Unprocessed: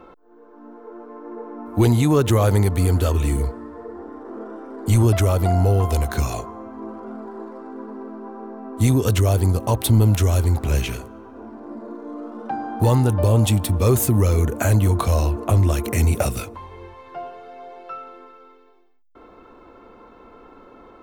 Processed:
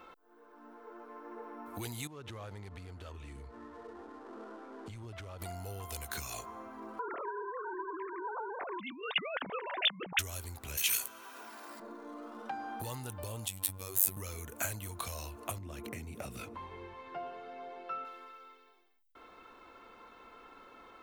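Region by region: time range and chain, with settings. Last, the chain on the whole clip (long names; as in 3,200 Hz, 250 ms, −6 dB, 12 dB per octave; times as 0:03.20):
0:02.07–0:05.42: gap after every zero crossing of 0.069 ms + downward compressor 2.5 to 1, threshold −29 dBFS + head-to-tape spacing loss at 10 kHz 23 dB
0:06.99–0:10.19: three sine waves on the formant tracks + parametric band 2,000 Hz +5.5 dB 2.1 octaves + compressor whose output falls as the input rises −25 dBFS
0:10.77–0:11.80: spectral tilt +4 dB per octave + one half of a high-frequency compander encoder only
0:13.48–0:14.17: high-shelf EQ 8,900 Hz +7 dB + downward compressor 5 to 1, threshold −20 dBFS + phases set to zero 94.8 Hz
0:15.58–0:18.05: low-pass filter 2,400 Hz 6 dB per octave + parametric band 220 Hz +10 dB 2.3 octaves + downward compressor 2 to 1, threshold −21 dBFS
whole clip: bass and treble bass +5 dB, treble −9 dB; downward compressor 3 to 1, threshold −27 dBFS; first-order pre-emphasis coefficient 0.97; level +10 dB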